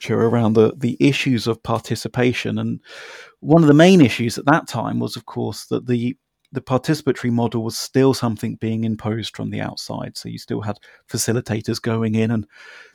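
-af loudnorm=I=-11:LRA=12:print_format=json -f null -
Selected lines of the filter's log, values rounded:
"input_i" : "-19.7",
"input_tp" : "-1.5",
"input_lra" : "7.2",
"input_thresh" : "-30.3",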